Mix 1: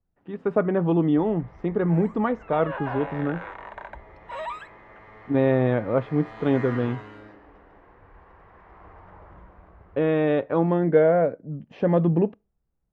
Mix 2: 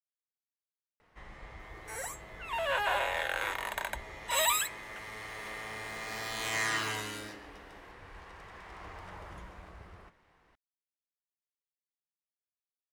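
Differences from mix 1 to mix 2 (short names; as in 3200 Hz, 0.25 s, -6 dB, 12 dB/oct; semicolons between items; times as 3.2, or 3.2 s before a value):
speech: muted; master: remove LPF 1300 Hz 12 dB/oct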